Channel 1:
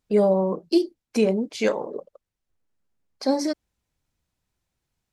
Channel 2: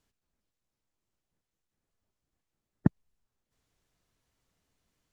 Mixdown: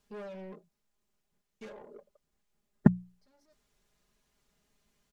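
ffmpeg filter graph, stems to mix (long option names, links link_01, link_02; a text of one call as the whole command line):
ffmpeg -i stem1.wav -i stem2.wav -filter_complex "[0:a]asoftclip=type=tanh:threshold=-27dB,volume=-18dB,asplit=3[link_01][link_02][link_03];[link_01]atrim=end=0.69,asetpts=PTS-STARTPTS,afade=type=out:start_time=0.686:duration=0.004:curve=hsin[link_04];[link_02]atrim=start=0.69:end=1.61,asetpts=PTS-STARTPTS,volume=0[link_05];[link_03]atrim=start=1.61,asetpts=PTS-STARTPTS,afade=type=in:duration=0.004:curve=hsin[link_06];[link_04][link_05][link_06]concat=n=3:v=0:a=1[link_07];[1:a]bandreject=frequency=60:width_type=h:width=6,bandreject=frequency=120:width_type=h:width=6,bandreject=frequency=180:width_type=h:width=6,volume=2dB,asplit=2[link_08][link_09];[link_09]apad=whole_len=225978[link_10];[link_07][link_10]sidechaincompress=threshold=-42dB:ratio=8:attack=8.6:release=1170[link_11];[link_11][link_08]amix=inputs=2:normalize=0,aecho=1:1:4.9:0.7" out.wav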